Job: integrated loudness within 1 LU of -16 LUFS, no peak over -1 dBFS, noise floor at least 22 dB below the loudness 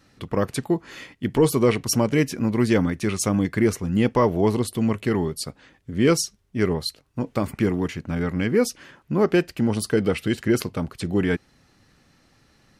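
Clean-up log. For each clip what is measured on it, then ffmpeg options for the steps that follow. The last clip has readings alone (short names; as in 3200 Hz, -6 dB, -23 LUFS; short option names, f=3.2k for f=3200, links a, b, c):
loudness -23.0 LUFS; peak -9.0 dBFS; loudness target -16.0 LUFS
-> -af "volume=7dB"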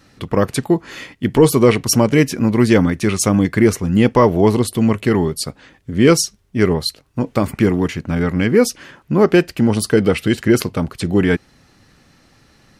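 loudness -16.0 LUFS; peak -2.0 dBFS; noise floor -53 dBFS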